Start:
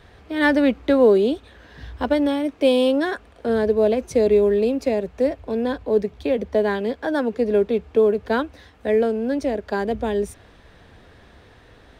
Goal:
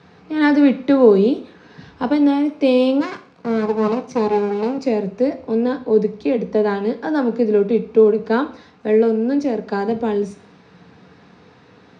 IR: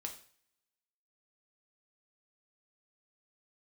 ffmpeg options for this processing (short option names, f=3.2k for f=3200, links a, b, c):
-filter_complex "[0:a]asettb=1/sr,asplit=3[a][b][c];[a]atrim=end=3.004[d];[b]atrim=start=3:end=4.78,asetpts=PTS-STARTPTS,afade=t=in:d=0.004:c=qsin,afade=t=out:st=1.776:d=0.004:c=qsin,aeval=exprs='max(val(0),0)':c=same[e];[c]atrim=start=4.776[f];[d][e]acrossfade=d=0.004:c1=hsin:c2=qsin[g];[g][f]acrossfade=d=0.004:c1=qsin:c2=hsin,highpass=f=120:w=0.5412,highpass=f=120:w=1.3066,equalizer=f=180:t=q:w=4:g=7,equalizer=f=600:t=q:w=4:g=-7,equalizer=f=1.8k:t=q:w=4:g=-6,equalizer=f=3.3k:t=q:w=4:g=-8,lowpass=f=6.1k:w=0.5412,lowpass=f=6.1k:w=1.3066,asplit=2[h][i];[1:a]atrim=start_sample=2205[j];[i][j]afir=irnorm=-1:irlink=0,volume=5.5dB[k];[h][k]amix=inputs=2:normalize=0,volume=-3.5dB"